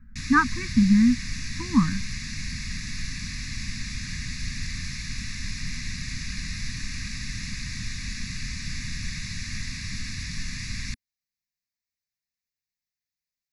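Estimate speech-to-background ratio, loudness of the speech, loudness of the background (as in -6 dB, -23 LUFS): 11.5 dB, -22.0 LUFS, -33.5 LUFS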